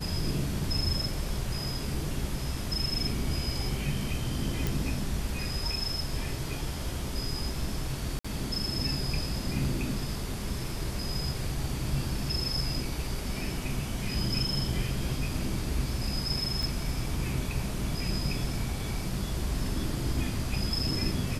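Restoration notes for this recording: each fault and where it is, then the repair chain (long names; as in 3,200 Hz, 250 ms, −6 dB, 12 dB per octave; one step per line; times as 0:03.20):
0:04.67: click
0:08.19–0:08.24: drop-out 55 ms
0:16.63: click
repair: click removal
repair the gap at 0:08.19, 55 ms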